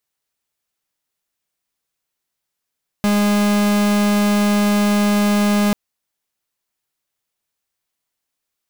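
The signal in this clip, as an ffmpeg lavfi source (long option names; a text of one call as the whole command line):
ffmpeg -f lavfi -i "aevalsrc='0.168*(2*lt(mod(206*t,1),0.44)-1)':duration=2.69:sample_rate=44100" out.wav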